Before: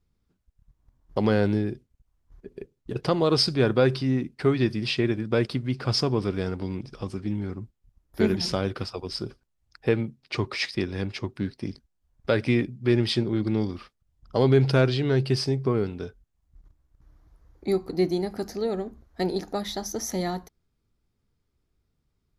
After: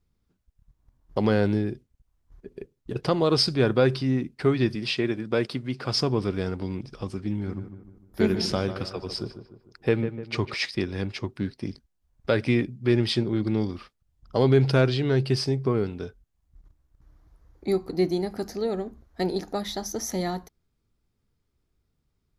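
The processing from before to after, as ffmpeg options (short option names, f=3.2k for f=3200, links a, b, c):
-filter_complex "[0:a]asettb=1/sr,asplit=3[a][b][c];[a]atrim=end=4.754[d];[b]atrim=start=4.75:end=5.97,asetpts=PTS-STARTPTS,afade=t=in:d=0.004:c=qsin,afade=t=out:st=1.216:d=0.004:c=qsin,highpass=f=190:p=1[e];[c]atrim=start=5.966[f];[d][e]acrossfade=d=0.004:c1=hsin:c2=qsin[g];[g][f]acrossfade=d=0.004:c1=qsin:c2=hsin,asettb=1/sr,asplit=3[h][i][j];[h]atrim=end=7.324[k];[i]atrim=start=7.32:end=10.54,asetpts=PTS-STARTPTS,afade=t=in:d=0.004:c=qsin,afade=t=out:st=3.216:d=0.004:c=qsin,asplit=2[l][m];[m]adelay=150,lowpass=f=2k:p=1,volume=-10dB,asplit=2[n][o];[o]adelay=150,lowpass=f=2k:p=1,volume=0.48,asplit=2[p][q];[q]adelay=150,lowpass=f=2k:p=1,volume=0.48,asplit=2[r][s];[s]adelay=150,lowpass=f=2k:p=1,volume=0.48,asplit=2[t][u];[u]adelay=150,lowpass=f=2k:p=1,volume=0.48[v];[l][n][p][r][t][v]amix=inputs=6:normalize=0,atrim=end_sample=142002[w];[j]atrim=start=10.536[x];[k][w]acrossfade=d=0.004:c1=hsin:c2=qsin[y];[y][x]acrossfade=d=0.004:c1=qsin:c2=hsin"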